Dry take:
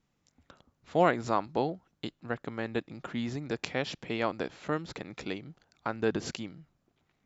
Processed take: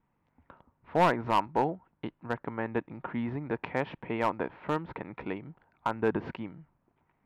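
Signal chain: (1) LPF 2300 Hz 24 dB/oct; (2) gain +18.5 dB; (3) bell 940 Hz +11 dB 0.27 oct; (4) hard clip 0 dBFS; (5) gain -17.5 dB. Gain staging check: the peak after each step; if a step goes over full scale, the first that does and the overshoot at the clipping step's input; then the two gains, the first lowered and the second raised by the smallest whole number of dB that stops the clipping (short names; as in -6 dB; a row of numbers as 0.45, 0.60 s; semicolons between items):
-11.0, +7.5, +9.5, 0.0, -17.5 dBFS; step 2, 9.5 dB; step 2 +8.5 dB, step 5 -7.5 dB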